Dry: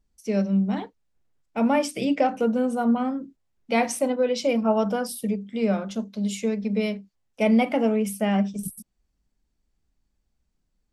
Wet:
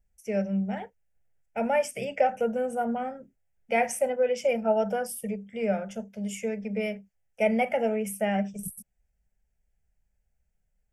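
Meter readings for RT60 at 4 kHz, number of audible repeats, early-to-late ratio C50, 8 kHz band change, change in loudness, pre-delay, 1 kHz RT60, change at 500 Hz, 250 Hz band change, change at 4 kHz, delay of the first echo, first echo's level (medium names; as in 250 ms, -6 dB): no reverb, no echo, no reverb, -3.0 dB, -4.0 dB, no reverb, no reverb, -1.5 dB, -8.5 dB, -7.5 dB, no echo, no echo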